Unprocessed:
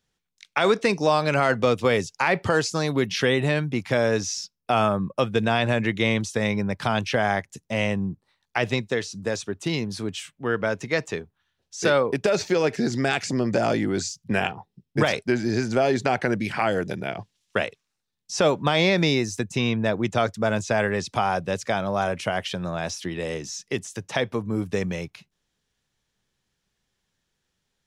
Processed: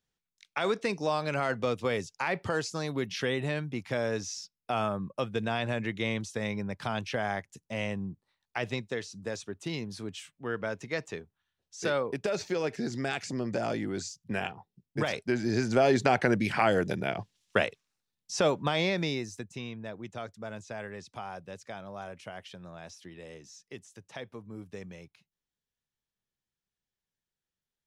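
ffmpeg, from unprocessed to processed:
-af "volume=-1.5dB,afade=t=in:st=15.06:d=0.89:silence=0.421697,afade=t=out:st=17.57:d=1.43:silence=0.398107,afade=t=out:st=19:d=0.71:silence=0.421697"

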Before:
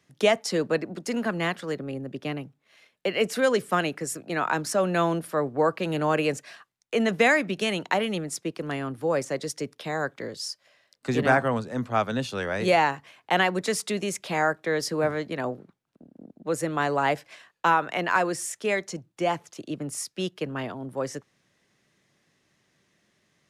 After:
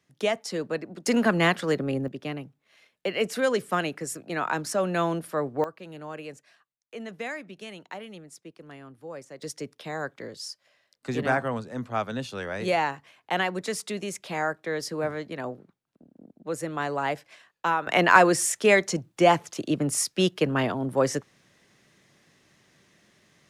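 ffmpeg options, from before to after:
-af "asetnsamples=n=441:p=0,asendcmd='1.06 volume volume 5.5dB;2.08 volume volume -2dB;5.64 volume volume -14.5dB;9.42 volume volume -4dB;17.87 volume volume 7dB',volume=-5dB"

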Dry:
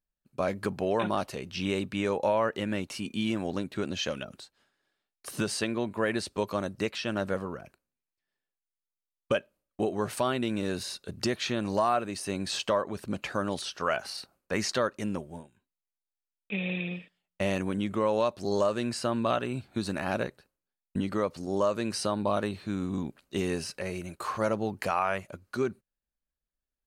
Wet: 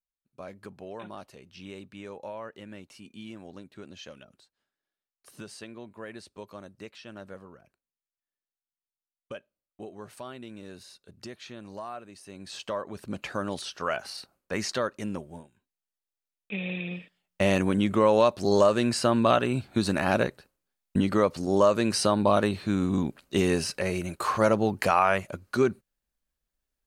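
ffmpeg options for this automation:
-af "volume=6dB,afade=t=in:st=12.32:d=0.92:silence=0.251189,afade=t=in:st=16.83:d=0.72:silence=0.446684"

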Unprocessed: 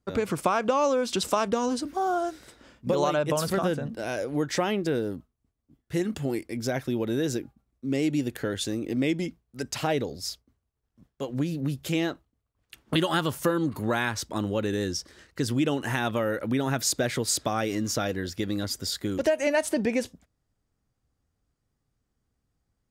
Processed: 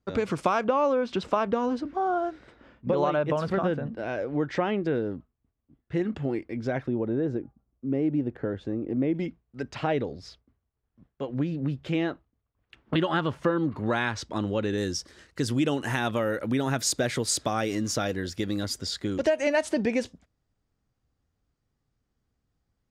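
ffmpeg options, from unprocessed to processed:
-af "asetnsamples=n=441:p=0,asendcmd='0.64 lowpass f 2400;6.88 lowpass f 1100;9.15 lowpass f 2600;13.86 lowpass f 4900;14.78 lowpass f 11000;18.79 lowpass f 6400',lowpass=5.9k"

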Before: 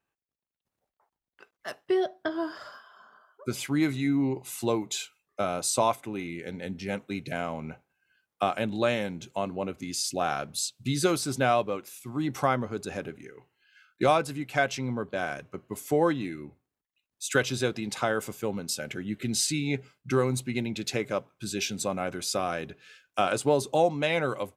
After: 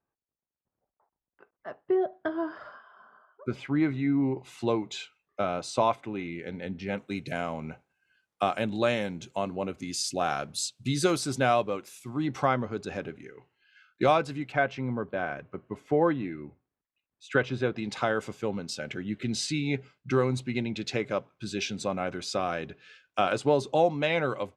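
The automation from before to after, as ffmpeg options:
-af "asetnsamples=n=441:p=0,asendcmd='2.13 lowpass f 2100;4.38 lowpass f 3700;6.98 lowpass f 9100;12.14 lowpass f 5000;14.52 lowpass f 2200;17.78 lowpass f 4900',lowpass=1.2k"

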